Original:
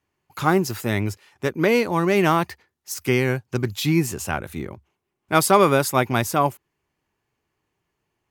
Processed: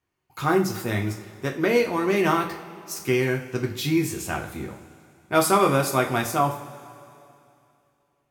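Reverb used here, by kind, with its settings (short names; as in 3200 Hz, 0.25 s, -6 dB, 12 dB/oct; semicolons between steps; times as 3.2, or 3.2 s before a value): two-slope reverb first 0.37 s, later 2.7 s, from -18 dB, DRR 1 dB; gain -5 dB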